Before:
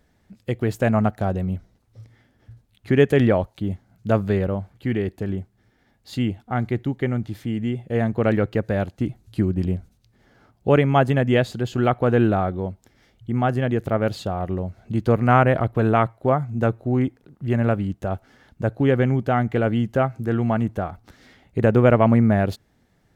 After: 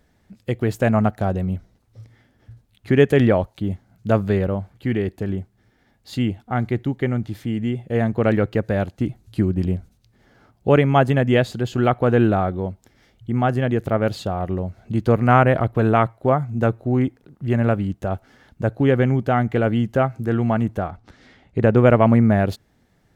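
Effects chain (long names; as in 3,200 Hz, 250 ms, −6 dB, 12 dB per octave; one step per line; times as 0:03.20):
0:20.87–0:21.77: high-frequency loss of the air 60 metres
level +1.5 dB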